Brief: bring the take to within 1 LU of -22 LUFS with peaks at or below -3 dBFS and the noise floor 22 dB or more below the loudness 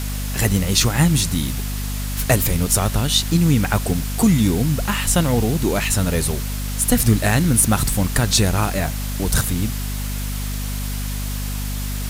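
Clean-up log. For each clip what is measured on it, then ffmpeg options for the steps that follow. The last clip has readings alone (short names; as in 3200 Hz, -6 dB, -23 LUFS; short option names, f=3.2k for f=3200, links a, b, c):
hum 50 Hz; harmonics up to 250 Hz; hum level -23 dBFS; noise floor -25 dBFS; noise floor target -42 dBFS; loudness -19.5 LUFS; peak -2.0 dBFS; loudness target -22.0 LUFS
-> -af "bandreject=f=50:t=h:w=4,bandreject=f=100:t=h:w=4,bandreject=f=150:t=h:w=4,bandreject=f=200:t=h:w=4,bandreject=f=250:t=h:w=4"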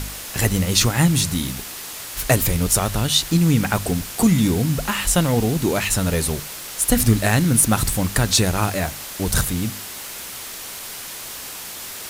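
hum none; noise floor -34 dBFS; noise floor target -42 dBFS
-> -af "afftdn=nr=8:nf=-34"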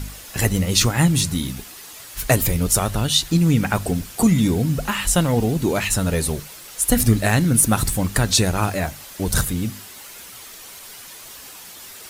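noise floor -40 dBFS; noise floor target -42 dBFS
-> -af "afftdn=nr=6:nf=-40"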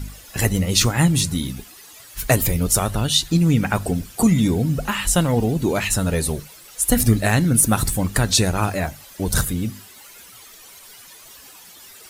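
noise floor -44 dBFS; loudness -19.5 LUFS; peak -2.0 dBFS; loudness target -22.0 LUFS
-> -af "volume=-2.5dB"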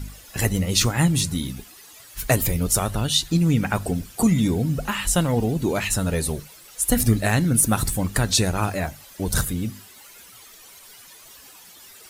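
loudness -22.0 LUFS; peak -4.5 dBFS; noise floor -47 dBFS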